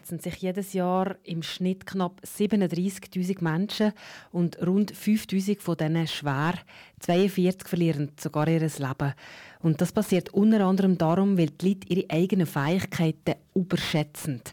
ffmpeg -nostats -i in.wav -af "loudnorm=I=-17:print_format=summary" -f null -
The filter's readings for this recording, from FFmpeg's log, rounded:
Input Integrated:    -26.5 LUFS
Input True Peak:     -11.7 dBTP
Input LRA:             3.7 LU
Input Threshold:     -36.6 LUFS